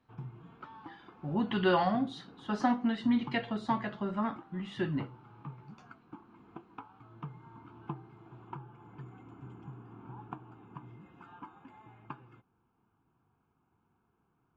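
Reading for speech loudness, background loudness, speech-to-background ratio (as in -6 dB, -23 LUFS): -32.0 LUFS, -50.0 LUFS, 18.0 dB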